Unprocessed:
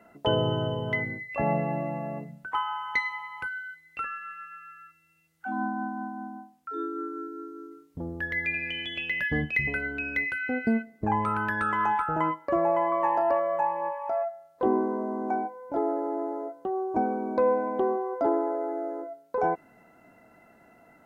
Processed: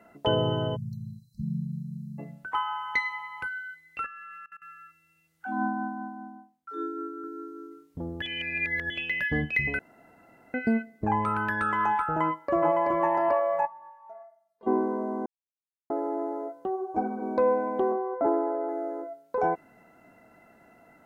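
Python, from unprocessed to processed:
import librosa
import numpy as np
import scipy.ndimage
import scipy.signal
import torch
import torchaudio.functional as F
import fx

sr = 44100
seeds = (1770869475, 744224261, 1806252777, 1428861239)

y = fx.spec_erase(x, sr, start_s=0.76, length_s=1.43, low_hz=220.0, high_hz=3900.0)
y = fx.level_steps(y, sr, step_db=22, at=(4.06, 4.62))
y = fx.band_widen(y, sr, depth_pct=70, at=(5.46, 7.24))
y = fx.echo_throw(y, sr, start_s=12.24, length_s=0.7, ms=380, feedback_pct=20, wet_db=-2.0)
y = fx.stiff_resonator(y, sr, f0_hz=210.0, decay_s=0.5, stiffness=0.008, at=(13.65, 14.66), fade=0.02)
y = fx.ensemble(y, sr, at=(16.75, 17.21), fade=0.02)
y = fx.lowpass(y, sr, hz=2100.0, slope=24, at=(17.92, 18.69))
y = fx.edit(y, sr, fx.reverse_span(start_s=8.22, length_s=0.68),
    fx.room_tone_fill(start_s=9.79, length_s=0.75),
    fx.silence(start_s=15.26, length_s=0.64), tone=tone)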